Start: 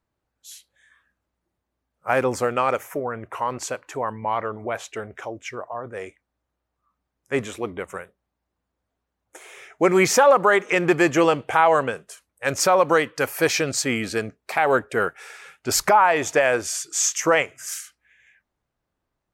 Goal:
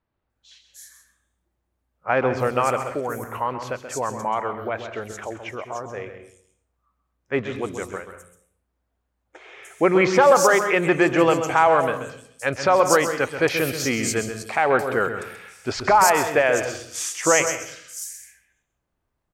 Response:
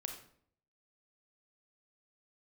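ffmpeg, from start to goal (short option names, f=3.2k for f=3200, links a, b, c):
-filter_complex "[0:a]acrossover=split=4700[a][b];[b]adelay=300[c];[a][c]amix=inputs=2:normalize=0,asplit=2[d][e];[1:a]atrim=start_sample=2205,lowshelf=f=130:g=11.5,adelay=132[f];[e][f]afir=irnorm=-1:irlink=0,volume=-7dB[g];[d][g]amix=inputs=2:normalize=0"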